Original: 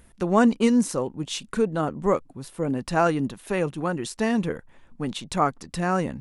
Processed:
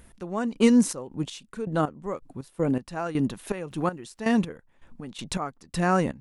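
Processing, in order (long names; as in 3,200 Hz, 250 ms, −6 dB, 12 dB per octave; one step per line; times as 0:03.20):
0:03.68–0:04.18: surface crackle 430 per second −57 dBFS
gate pattern "x..xx.x..x..x." 81 BPM −12 dB
level +1.5 dB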